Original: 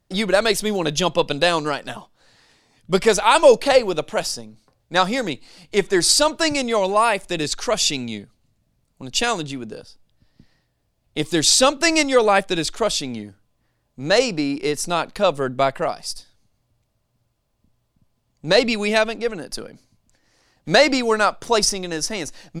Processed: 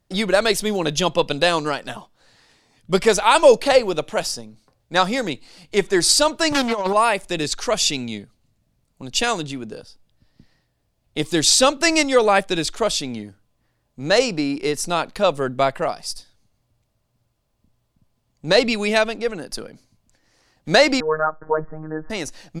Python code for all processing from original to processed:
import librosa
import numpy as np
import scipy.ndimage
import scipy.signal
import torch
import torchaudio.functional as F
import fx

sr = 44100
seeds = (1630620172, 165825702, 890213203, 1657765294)

y = fx.chain(x, sr, fx.peak_eq(hz=950.0, db=8.5, octaves=0.52),
    fx.over_compress(threshold_db=-19.0, ratio=-0.5),
    fx.doppler_dist(depth_ms=0.35), at=(6.52, 6.93))
y = fx.chain(y, sr, fx.cheby1_lowpass(hz=1700.0, order=6),
    fx.robotise(hz=156.0), at=(21.0, 22.1))